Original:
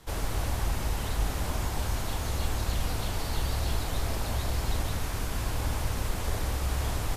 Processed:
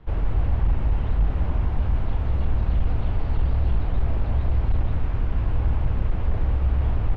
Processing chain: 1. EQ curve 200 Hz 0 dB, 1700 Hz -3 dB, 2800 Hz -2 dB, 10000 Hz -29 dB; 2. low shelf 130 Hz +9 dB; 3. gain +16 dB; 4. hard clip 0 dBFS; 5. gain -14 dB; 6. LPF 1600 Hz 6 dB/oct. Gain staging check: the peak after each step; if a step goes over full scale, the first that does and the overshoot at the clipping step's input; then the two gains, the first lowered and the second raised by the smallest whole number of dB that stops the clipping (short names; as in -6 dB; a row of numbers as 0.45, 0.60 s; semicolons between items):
-16.0, -9.5, +6.5, 0.0, -14.0, -14.0 dBFS; step 3, 6.5 dB; step 3 +9 dB, step 5 -7 dB